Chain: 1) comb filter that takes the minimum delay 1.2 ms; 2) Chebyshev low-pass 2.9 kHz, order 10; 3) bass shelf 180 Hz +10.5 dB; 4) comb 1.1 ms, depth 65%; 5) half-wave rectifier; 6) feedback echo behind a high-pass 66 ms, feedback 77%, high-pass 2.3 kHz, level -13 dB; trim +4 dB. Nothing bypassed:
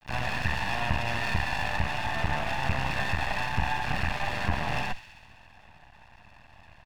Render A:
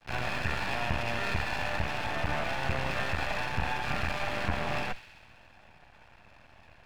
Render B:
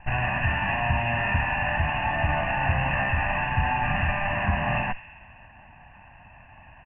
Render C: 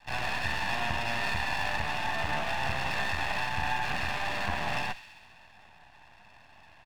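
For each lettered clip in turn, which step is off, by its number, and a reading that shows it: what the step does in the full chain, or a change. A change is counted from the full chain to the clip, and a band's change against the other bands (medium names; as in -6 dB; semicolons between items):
4, 500 Hz band +3.5 dB; 5, crest factor change -3.0 dB; 3, 125 Hz band -6.5 dB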